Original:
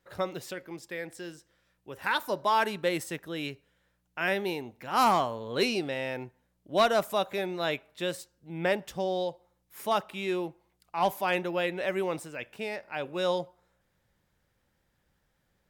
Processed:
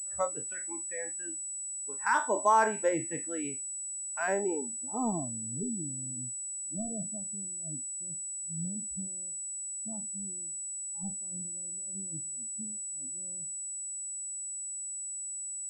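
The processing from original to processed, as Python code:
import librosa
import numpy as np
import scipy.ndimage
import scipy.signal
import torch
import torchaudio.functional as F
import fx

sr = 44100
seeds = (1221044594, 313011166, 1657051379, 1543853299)

y = fx.spec_trails(x, sr, decay_s=0.32)
y = fx.filter_sweep_lowpass(y, sr, from_hz=1300.0, to_hz=190.0, start_s=4.16, end_s=5.54, q=1.1)
y = fx.noise_reduce_blind(y, sr, reduce_db=19)
y = fx.pwm(y, sr, carrier_hz=7900.0)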